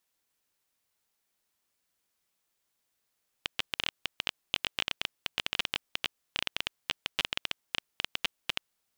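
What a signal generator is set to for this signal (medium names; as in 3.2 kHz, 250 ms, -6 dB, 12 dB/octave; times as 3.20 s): random clicks 13 per s -10.5 dBFS 5.32 s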